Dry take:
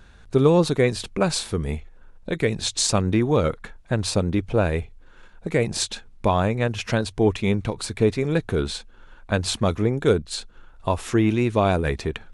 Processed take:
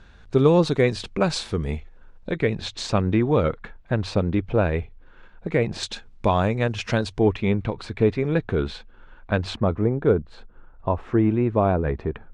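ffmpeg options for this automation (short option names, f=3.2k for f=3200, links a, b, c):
-af "asetnsamples=n=441:p=0,asendcmd='2.31 lowpass f 3100;5.83 lowpass f 6400;7.19 lowpass f 2900;9.56 lowpass f 1300',lowpass=5.6k"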